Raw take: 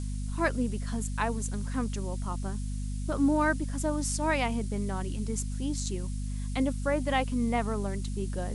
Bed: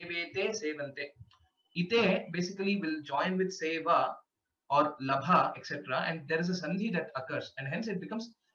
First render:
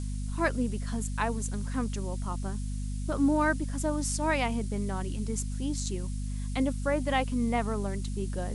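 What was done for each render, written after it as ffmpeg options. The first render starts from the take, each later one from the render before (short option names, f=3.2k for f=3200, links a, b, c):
-af anull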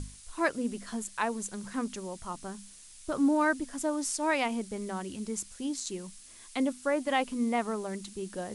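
-af "bandreject=f=50:t=h:w=6,bandreject=f=100:t=h:w=6,bandreject=f=150:t=h:w=6,bandreject=f=200:t=h:w=6,bandreject=f=250:t=h:w=6"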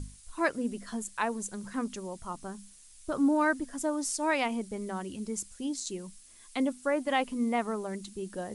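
-af "afftdn=nr=6:nf=-52"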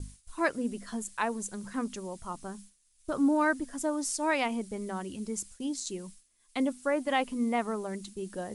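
-af "agate=range=-33dB:threshold=-44dB:ratio=3:detection=peak"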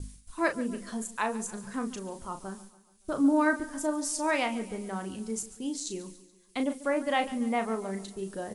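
-filter_complex "[0:a]asplit=2[a][b];[b]adelay=36,volume=-8dB[c];[a][c]amix=inputs=2:normalize=0,aecho=1:1:142|284|426|568:0.133|0.0693|0.0361|0.0188"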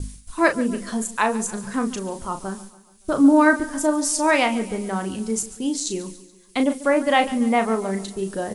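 -af "volume=9.5dB"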